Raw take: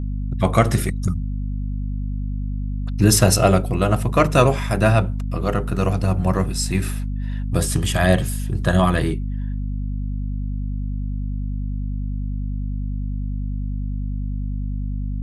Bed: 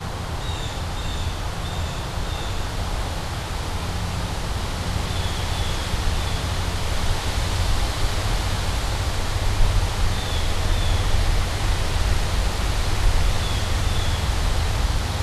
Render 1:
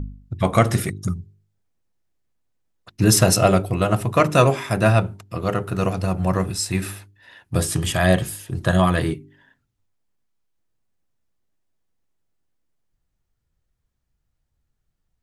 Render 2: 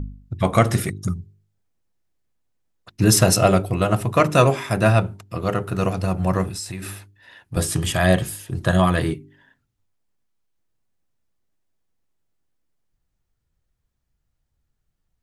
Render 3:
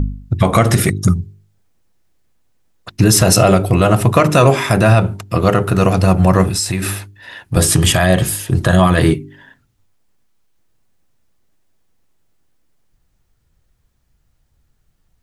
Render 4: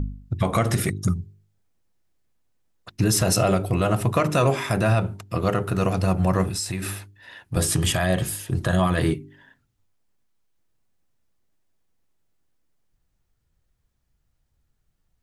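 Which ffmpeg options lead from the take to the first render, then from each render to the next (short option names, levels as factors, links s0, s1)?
-af "bandreject=f=50:t=h:w=4,bandreject=f=100:t=h:w=4,bandreject=f=150:t=h:w=4,bandreject=f=200:t=h:w=4,bandreject=f=250:t=h:w=4,bandreject=f=300:t=h:w=4,bandreject=f=350:t=h:w=4,bandreject=f=400:t=h:w=4"
-filter_complex "[0:a]asettb=1/sr,asplit=3[s0][s1][s2];[s0]atrim=end=6.484[s3];[s1]atrim=start=6.48:end=7.57,asetpts=PTS-STARTPTS,afade=t=in:d=0.004:c=qsin,afade=t=out:st=1.086:d=0.004:c=qsin,acompressor=threshold=0.0447:ratio=6:attack=3.2:release=140:knee=1:detection=peak[s4];[s2]atrim=start=7.566[s5];[s3][s4]acrossfade=d=0.004:c1=hsin:c2=qsin[s6];[s6][s5]acrossfade=d=0.004:c1=qsin:c2=hsin"
-af "acompressor=threshold=0.0891:ratio=1.5,alimiter=level_in=4.22:limit=0.891:release=50:level=0:latency=1"
-af "volume=0.335"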